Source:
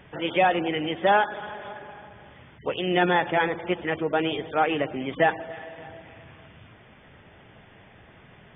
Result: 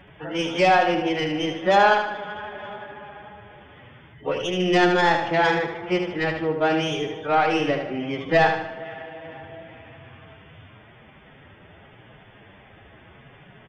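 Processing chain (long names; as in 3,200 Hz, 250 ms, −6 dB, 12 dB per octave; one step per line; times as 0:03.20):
stylus tracing distortion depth 0.068 ms
phase-vocoder stretch with locked phases 1.6×
on a send: repeating echo 76 ms, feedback 43%, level −6.5 dB
on the sum: level +2 dB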